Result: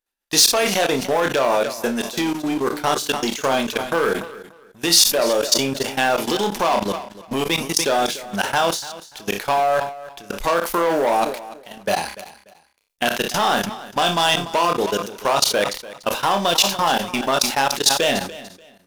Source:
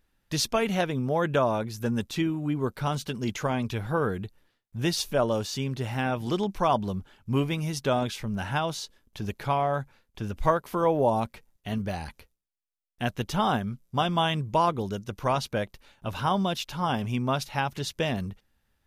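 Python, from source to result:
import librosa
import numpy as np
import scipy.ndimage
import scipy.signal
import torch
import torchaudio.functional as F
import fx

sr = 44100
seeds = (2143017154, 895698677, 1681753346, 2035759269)

y = fx.leveller(x, sr, passes=3)
y = fx.peak_eq(y, sr, hz=100.0, db=-12.5, octaves=1.1)
y = fx.room_flutter(y, sr, wall_m=5.1, rt60_s=0.24)
y = fx.level_steps(y, sr, step_db=22)
y = fx.bass_treble(y, sr, bass_db=-12, treble_db=7)
y = fx.echo_feedback(y, sr, ms=292, feedback_pct=25, wet_db=-17.0)
y = fx.sustainer(y, sr, db_per_s=100.0)
y = y * librosa.db_to_amplitude(5.0)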